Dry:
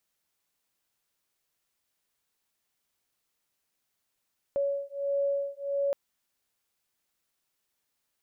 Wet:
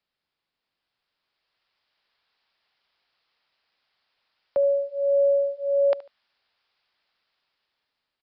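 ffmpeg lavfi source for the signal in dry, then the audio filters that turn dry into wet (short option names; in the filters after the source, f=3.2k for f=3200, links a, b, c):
-f lavfi -i "aevalsrc='0.0316*(sin(2*PI*560*t)+sin(2*PI*561.5*t))':d=1.37:s=44100"
-filter_complex "[0:a]acrossover=split=220|540[a][b][c];[c]dynaudnorm=f=570:g=5:m=11dB[d];[a][b][d]amix=inputs=3:normalize=0,aresample=11025,aresample=44100,aecho=1:1:73|146:0.119|0.0333"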